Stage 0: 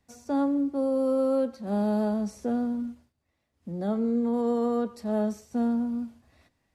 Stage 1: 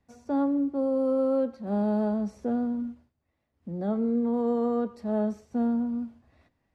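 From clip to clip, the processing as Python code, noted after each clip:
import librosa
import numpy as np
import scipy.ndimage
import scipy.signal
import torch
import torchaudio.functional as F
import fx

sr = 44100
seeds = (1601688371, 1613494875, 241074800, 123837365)

y = fx.lowpass(x, sr, hz=1900.0, slope=6)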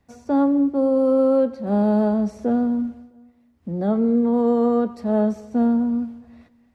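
y = fx.echo_feedback(x, sr, ms=220, feedback_pct=49, wet_db=-23.0)
y = y * librosa.db_to_amplitude(7.5)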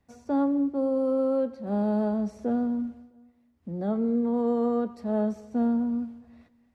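y = fx.rider(x, sr, range_db=10, speed_s=2.0)
y = y * librosa.db_to_amplitude(-7.0)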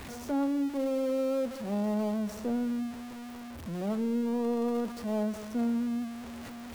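y = x + 0.5 * 10.0 ** (-31.0 / 20.0) * np.sign(x)
y = y * librosa.db_to_amplitude(-6.0)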